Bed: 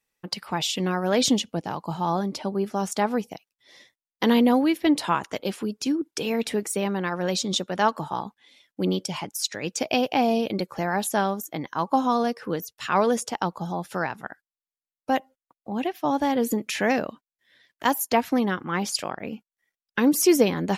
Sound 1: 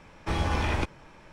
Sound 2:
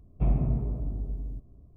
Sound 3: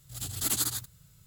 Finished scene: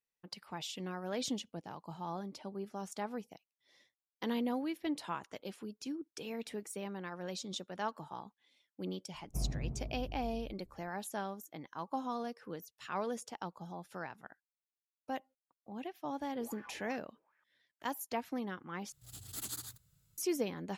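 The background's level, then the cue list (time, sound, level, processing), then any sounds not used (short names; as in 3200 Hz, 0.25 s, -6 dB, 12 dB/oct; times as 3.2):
bed -16 dB
9.14 add 2 -12 dB
16.12 add 1 -12.5 dB + wah 2.6 Hz 420–1800 Hz, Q 6.3
18.92 replace with 3 -13.5 dB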